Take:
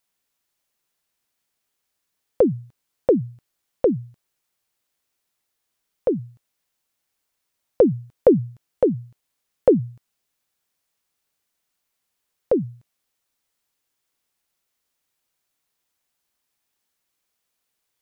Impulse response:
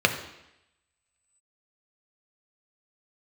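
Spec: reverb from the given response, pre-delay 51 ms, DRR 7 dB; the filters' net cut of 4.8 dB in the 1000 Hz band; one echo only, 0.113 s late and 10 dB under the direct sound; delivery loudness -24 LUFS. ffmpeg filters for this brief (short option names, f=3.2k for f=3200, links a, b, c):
-filter_complex "[0:a]equalizer=f=1k:t=o:g=-7.5,aecho=1:1:113:0.316,asplit=2[a][b];[1:a]atrim=start_sample=2205,adelay=51[c];[b][c]afir=irnorm=-1:irlink=0,volume=-23.5dB[d];[a][d]amix=inputs=2:normalize=0,volume=-1.5dB"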